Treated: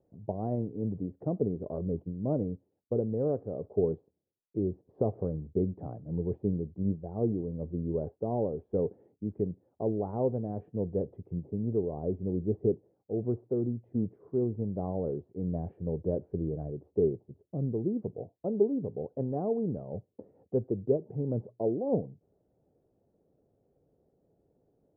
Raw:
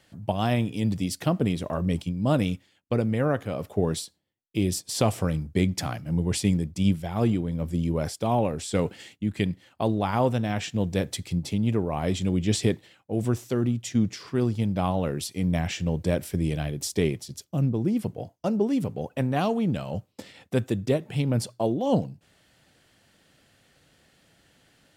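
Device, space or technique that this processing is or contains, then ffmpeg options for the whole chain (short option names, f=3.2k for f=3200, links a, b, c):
under water: -filter_complex "[0:a]lowpass=f=730:w=0.5412,lowpass=f=730:w=1.3066,equalizer=f=420:t=o:w=0.55:g=10,asettb=1/sr,asplit=3[a][b][c];[a]atrim=end=11.434[d];[b]atrim=start=11.43:end=13.19,asetpts=PTS-STARTPTS,afade=t=in:d=0.004:c=qsin,afade=t=out:st=1.756:d=0.004:c=qsin,lowpass=f=1.2k:p=1[e];[c]atrim=start=13.186[f];[d][e]acrossfade=d=0.004:c1=hsin:c2=qsin[g];[g][f]acrossfade=d=0.004:c1=qsin:c2=hsin,volume=-8.5dB"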